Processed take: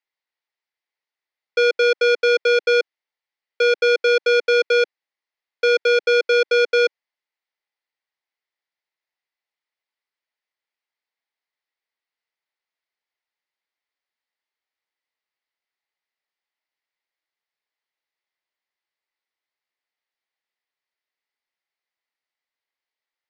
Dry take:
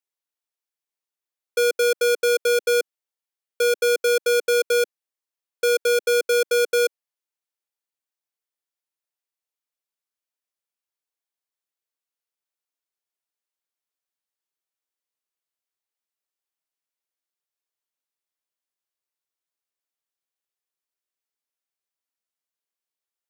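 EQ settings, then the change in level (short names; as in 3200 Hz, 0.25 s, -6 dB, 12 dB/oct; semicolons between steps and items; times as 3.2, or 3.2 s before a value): speaker cabinet 320–4800 Hz, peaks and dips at 850 Hz +4 dB, 2000 Hz +10 dB, 4700 Hz +3 dB; +3.0 dB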